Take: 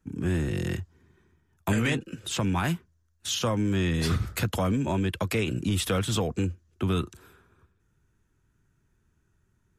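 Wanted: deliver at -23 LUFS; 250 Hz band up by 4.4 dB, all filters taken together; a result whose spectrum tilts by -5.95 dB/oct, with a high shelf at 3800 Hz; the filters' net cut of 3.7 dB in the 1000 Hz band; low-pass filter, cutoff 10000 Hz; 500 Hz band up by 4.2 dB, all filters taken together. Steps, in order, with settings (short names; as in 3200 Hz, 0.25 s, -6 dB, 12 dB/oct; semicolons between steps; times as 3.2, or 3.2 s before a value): LPF 10000 Hz; bell 250 Hz +5 dB; bell 500 Hz +5 dB; bell 1000 Hz -7 dB; high shelf 3800 Hz +3.5 dB; gain +2.5 dB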